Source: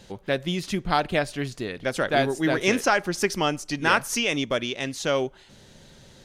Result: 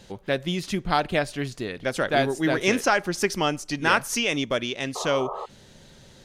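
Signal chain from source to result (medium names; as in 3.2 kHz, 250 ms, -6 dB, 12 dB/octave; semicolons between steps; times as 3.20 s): painted sound noise, 4.95–5.46 s, 370–1300 Hz -33 dBFS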